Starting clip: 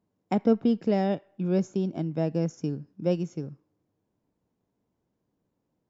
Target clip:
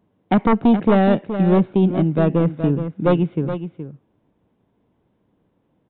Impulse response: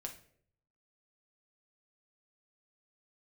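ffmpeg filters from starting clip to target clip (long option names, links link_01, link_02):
-af "aresample=8000,aeval=exprs='0.282*sin(PI/2*2.24*val(0)/0.282)':channel_layout=same,aresample=44100,aecho=1:1:421:0.316,volume=1.5dB"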